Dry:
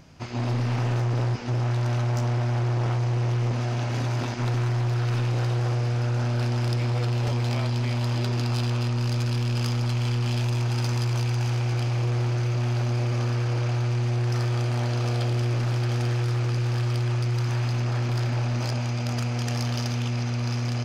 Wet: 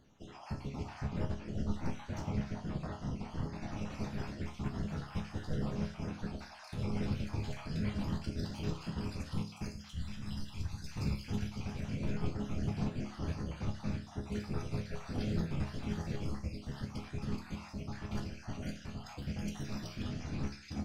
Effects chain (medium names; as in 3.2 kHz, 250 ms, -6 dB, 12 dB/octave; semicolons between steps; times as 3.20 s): random holes in the spectrogram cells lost 46%; whisper effect; 9.68–10.97 s: peaking EQ 410 Hz -13 dB 2.4 oct; chord resonator C#2 minor, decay 0.44 s; upward expansion 1.5:1, over -42 dBFS; trim +5 dB